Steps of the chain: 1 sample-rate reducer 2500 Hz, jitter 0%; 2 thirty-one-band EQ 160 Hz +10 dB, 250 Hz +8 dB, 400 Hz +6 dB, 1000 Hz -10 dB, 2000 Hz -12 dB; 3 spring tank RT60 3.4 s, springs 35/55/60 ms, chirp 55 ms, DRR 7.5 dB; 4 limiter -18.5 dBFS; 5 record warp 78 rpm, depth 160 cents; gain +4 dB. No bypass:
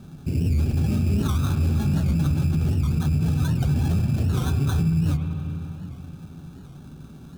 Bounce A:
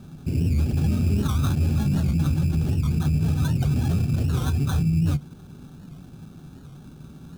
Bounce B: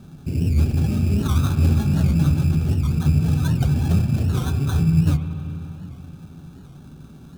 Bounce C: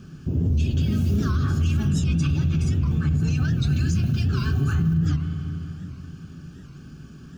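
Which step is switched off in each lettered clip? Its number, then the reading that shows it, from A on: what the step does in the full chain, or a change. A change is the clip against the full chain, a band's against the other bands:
3, momentary loudness spread change -14 LU; 4, mean gain reduction 1.5 dB; 1, distortion -10 dB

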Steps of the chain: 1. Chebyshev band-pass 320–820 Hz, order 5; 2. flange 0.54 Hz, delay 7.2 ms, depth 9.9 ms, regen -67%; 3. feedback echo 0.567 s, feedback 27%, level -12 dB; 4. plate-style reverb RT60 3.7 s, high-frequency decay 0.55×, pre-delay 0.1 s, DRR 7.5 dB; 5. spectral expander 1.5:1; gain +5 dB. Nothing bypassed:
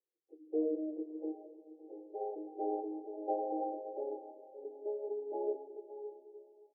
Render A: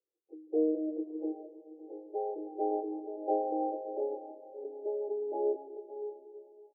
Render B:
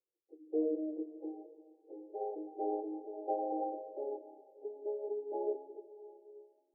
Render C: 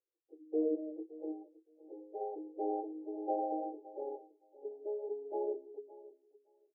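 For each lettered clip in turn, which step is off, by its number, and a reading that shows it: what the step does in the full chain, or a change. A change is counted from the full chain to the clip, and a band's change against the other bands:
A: 2, momentary loudness spread change +2 LU; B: 3, momentary loudness spread change +2 LU; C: 4, momentary loudness spread change +2 LU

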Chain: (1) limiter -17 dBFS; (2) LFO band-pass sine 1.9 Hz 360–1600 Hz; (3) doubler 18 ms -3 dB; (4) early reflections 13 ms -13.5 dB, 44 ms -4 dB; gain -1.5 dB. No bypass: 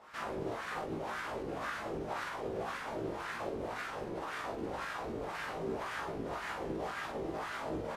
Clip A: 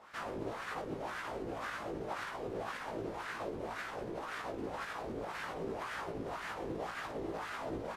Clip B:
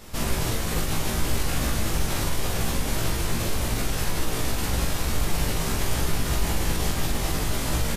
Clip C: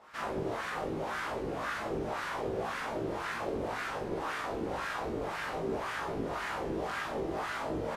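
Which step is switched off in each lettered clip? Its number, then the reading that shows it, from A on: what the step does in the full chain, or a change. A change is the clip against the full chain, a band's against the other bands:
4, loudness change -1.5 LU; 2, 8 kHz band +16.5 dB; 1, mean gain reduction 4.0 dB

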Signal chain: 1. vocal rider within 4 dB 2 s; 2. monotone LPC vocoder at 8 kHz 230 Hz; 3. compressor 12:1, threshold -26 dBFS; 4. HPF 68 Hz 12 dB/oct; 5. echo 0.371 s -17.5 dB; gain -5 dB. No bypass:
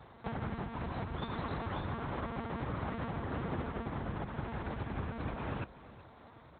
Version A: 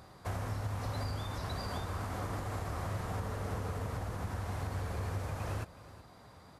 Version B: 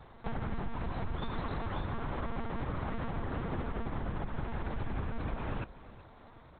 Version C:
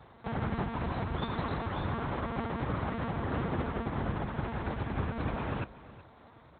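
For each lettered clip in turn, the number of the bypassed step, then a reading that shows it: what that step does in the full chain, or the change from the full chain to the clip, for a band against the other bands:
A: 2, 4 kHz band +4.5 dB; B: 4, crest factor change -2.5 dB; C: 3, mean gain reduction 4.0 dB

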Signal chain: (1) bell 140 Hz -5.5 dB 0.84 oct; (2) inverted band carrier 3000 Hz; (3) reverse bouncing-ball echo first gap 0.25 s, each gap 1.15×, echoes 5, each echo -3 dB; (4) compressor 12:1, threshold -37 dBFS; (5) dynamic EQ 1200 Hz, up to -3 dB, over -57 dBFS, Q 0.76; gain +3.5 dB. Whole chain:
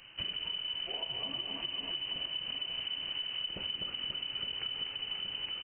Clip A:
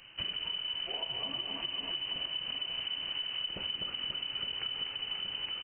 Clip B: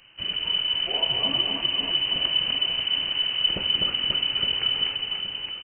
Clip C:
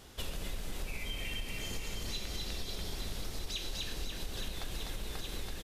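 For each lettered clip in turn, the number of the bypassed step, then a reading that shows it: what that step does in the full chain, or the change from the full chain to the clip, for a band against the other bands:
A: 5, 1 kHz band +2.0 dB; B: 4, mean gain reduction 10.0 dB; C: 2, 125 Hz band +9.5 dB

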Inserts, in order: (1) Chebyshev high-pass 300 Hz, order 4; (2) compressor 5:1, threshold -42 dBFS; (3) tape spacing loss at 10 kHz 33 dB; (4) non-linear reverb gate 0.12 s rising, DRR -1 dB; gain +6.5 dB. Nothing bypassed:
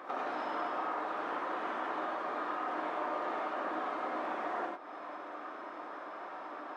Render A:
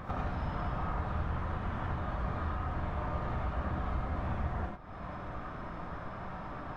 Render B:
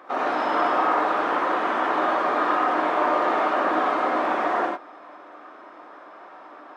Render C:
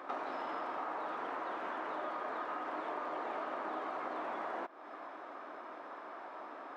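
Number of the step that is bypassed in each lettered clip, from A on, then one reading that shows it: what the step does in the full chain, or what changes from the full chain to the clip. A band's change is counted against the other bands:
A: 1, 250 Hz band +6.5 dB; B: 2, mean gain reduction 9.5 dB; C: 4, loudness change -3.5 LU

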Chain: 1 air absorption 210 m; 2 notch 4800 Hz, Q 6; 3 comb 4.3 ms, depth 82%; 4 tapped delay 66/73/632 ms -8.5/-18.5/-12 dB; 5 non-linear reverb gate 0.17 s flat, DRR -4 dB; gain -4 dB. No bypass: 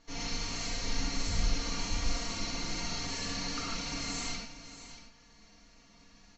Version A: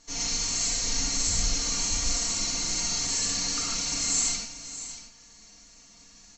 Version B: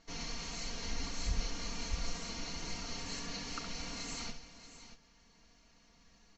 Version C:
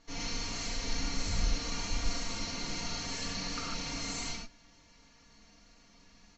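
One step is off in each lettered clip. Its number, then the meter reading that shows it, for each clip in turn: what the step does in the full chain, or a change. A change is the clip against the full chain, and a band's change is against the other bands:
1, 4 kHz band +7.0 dB; 5, echo-to-direct 5.0 dB to -6.5 dB; 4, momentary loudness spread change -10 LU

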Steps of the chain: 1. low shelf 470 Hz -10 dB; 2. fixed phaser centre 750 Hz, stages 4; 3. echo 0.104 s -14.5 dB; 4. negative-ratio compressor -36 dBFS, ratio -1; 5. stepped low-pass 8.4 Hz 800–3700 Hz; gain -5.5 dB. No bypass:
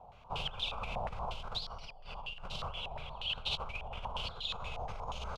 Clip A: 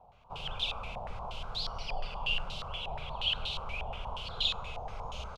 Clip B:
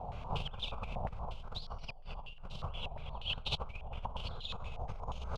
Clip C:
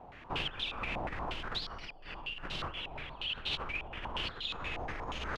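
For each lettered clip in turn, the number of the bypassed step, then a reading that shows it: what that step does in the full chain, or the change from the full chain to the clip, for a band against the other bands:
4, momentary loudness spread change +3 LU; 1, 125 Hz band +7.0 dB; 2, 250 Hz band +6.5 dB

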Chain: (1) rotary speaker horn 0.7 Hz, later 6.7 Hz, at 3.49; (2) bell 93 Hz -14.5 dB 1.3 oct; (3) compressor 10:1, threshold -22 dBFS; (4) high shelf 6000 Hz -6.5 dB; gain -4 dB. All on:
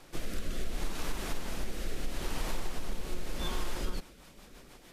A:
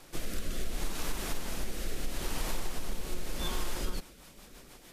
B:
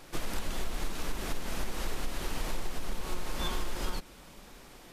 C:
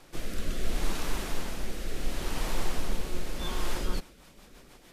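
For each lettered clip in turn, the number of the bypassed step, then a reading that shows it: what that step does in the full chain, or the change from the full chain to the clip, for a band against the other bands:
4, 8 kHz band +4.0 dB; 1, 125 Hz band -2.0 dB; 3, mean gain reduction 3.0 dB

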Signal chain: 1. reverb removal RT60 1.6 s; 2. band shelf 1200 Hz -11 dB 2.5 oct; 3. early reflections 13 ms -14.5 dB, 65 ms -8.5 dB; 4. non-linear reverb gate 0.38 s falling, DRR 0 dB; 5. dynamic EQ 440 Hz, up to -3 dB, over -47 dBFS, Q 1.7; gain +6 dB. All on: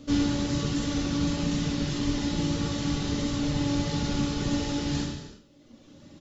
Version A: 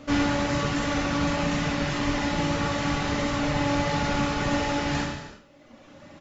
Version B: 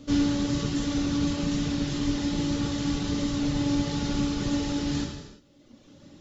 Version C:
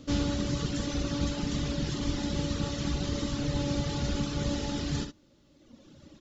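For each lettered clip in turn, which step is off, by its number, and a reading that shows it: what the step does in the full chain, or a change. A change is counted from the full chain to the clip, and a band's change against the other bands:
2, 1 kHz band +9.5 dB; 3, 250 Hz band +2.0 dB; 4, 500 Hz band +2.0 dB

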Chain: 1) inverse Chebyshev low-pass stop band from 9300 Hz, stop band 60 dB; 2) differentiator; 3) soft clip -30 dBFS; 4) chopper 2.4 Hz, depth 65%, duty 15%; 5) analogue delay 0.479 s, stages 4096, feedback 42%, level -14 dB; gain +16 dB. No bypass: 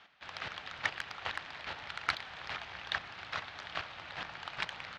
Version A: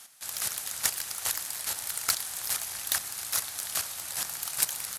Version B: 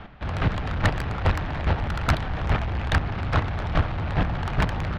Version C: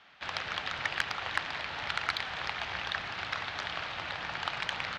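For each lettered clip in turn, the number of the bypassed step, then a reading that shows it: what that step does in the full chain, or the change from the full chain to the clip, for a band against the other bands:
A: 1, 8 kHz band +30.5 dB; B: 2, 125 Hz band +22.0 dB; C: 4, crest factor change -5.0 dB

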